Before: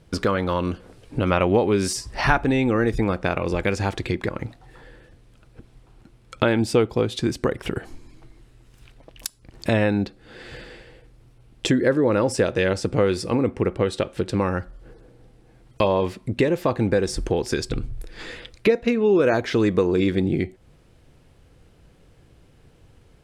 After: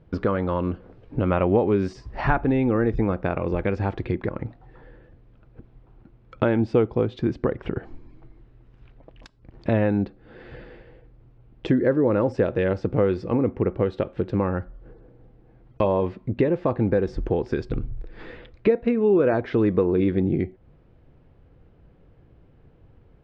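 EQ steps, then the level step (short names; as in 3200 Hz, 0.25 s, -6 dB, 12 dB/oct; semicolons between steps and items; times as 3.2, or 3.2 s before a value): LPF 1200 Hz 6 dB/oct; air absorption 160 m; 0.0 dB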